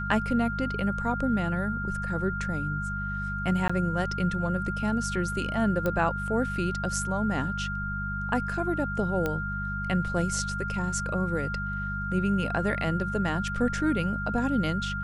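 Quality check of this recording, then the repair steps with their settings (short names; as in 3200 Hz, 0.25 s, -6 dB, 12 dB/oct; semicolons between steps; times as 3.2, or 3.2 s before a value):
hum 50 Hz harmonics 4 -34 dBFS
tone 1400 Hz -32 dBFS
3.68–3.69 gap 15 ms
5.86 pop -15 dBFS
9.26 pop -15 dBFS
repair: de-click; de-hum 50 Hz, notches 4; notch 1400 Hz, Q 30; interpolate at 3.68, 15 ms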